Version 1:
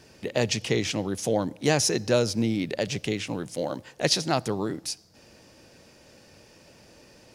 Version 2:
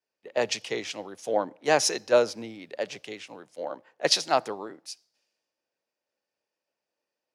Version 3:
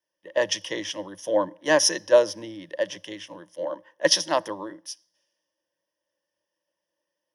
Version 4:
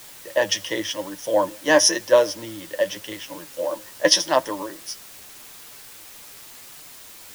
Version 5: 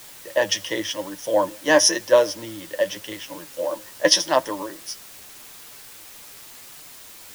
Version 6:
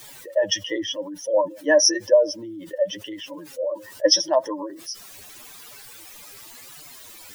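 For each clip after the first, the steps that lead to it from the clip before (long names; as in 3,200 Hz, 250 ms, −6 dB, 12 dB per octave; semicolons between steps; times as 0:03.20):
high-pass filter 700 Hz 12 dB per octave; spectral tilt −3 dB per octave; multiband upward and downward expander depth 100%
EQ curve with evenly spaced ripples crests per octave 1.2, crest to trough 14 dB
in parallel at −7.5 dB: bit-depth reduction 6 bits, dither triangular; on the sum: flanger 0.88 Hz, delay 6.5 ms, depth 4.1 ms, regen +42%; level +4.5 dB
no processing that can be heard
expanding power law on the bin magnitudes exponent 2.1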